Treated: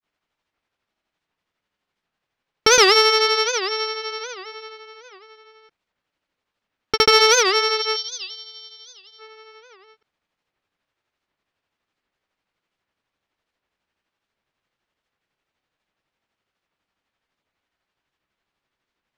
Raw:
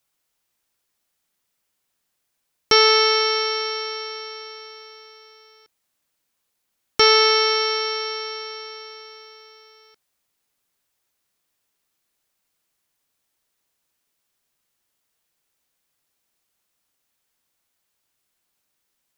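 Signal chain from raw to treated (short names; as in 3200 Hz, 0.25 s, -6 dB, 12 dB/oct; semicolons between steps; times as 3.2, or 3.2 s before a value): spectral gain 7.88–9.13, 390–2900 Hz -22 dB; low-pass opened by the level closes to 2900 Hz, open at -20.5 dBFS; grains 0.147 s, grains 12/s, pitch spread up and down by 0 st; in parallel at -3 dB: soft clip -17 dBFS, distortion -10 dB; on the sum: record warp 78 rpm, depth 250 cents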